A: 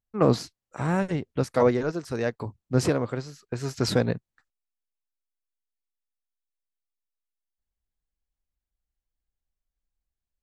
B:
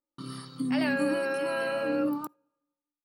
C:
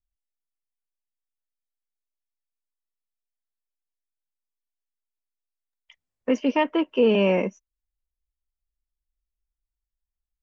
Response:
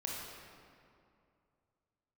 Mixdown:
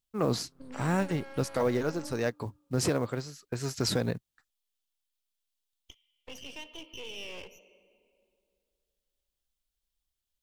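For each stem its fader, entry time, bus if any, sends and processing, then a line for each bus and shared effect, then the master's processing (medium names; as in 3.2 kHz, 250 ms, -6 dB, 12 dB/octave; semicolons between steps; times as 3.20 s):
-3.0 dB, 0.00 s, no bus, no send, treble shelf 4.5 kHz +7.5 dB; peak limiter -14.5 dBFS, peak gain reduction 6 dB; short-mantissa float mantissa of 4-bit
-13.5 dB, 0.00 s, bus A, send -23.5 dB, level-controlled noise filter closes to 480 Hz, open at -26 dBFS
-15.0 dB, 0.00 s, bus A, send -19 dB, Bessel high-pass 390 Hz, order 4; resonant high shelf 2.3 kHz +11.5 dB, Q 3; three bands compressed up and down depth 40%
bus A: 0.0 dB, half-wave rectifier; peak limiter -32.5 dBFS, peak gain reduction 9.5 dB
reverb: on, RT60 2.5 s, pre-delay 22 ms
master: none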